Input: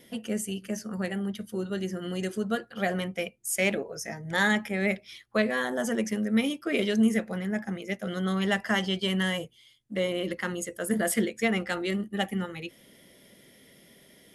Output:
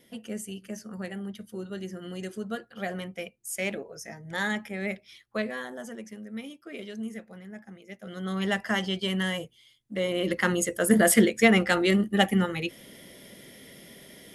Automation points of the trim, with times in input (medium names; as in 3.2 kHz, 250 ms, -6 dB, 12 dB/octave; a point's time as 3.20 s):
5.43 s -5 dB
6.02 s -13 dB
7.84 s -13 dB
8.43 s -1 dB
9.99 s -1 dB
10.44 s +7 dB